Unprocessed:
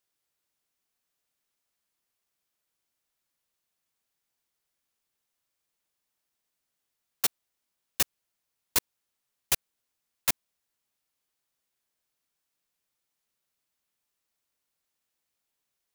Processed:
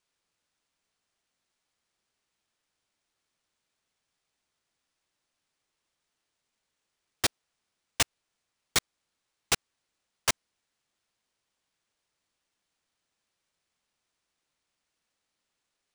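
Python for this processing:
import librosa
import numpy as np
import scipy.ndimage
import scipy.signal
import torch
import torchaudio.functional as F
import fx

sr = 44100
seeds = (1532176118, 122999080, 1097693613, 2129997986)

y = np.repeat(x[::3], 3)[:len(x)]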